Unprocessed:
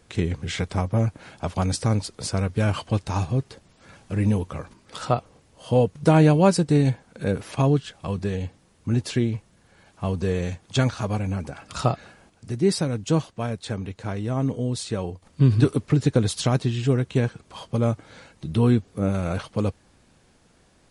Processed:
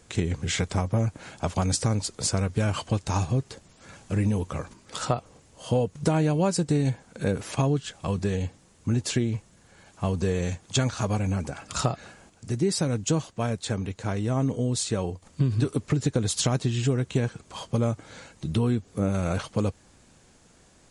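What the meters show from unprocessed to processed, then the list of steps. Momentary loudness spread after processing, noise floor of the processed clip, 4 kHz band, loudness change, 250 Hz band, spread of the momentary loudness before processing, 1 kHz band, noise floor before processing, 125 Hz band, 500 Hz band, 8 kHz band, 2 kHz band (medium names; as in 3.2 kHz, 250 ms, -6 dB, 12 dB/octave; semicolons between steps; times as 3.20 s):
8 LU, -58 dBFS, +0.5 dB, -3.5 dB, -3.5 dB, 12 LU, -3.5 dB, -59 dBFS, -3.0 dB, -4.0 dB, +4.5 dB, -2.0 dB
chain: peaking EQ 7.1 kHz +7.5 dB 0.57 oct; compression 6:1, threshold -21 dBFS, peak gain reduction 9.5 dB; trim +1 dB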